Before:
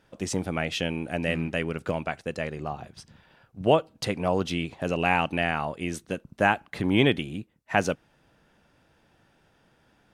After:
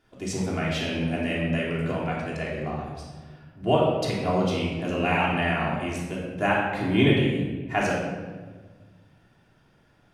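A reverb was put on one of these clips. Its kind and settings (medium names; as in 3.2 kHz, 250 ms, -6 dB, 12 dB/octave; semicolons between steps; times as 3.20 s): simulated room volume 1200 m³, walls mixed, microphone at 3.2 m; trim -5.5 dB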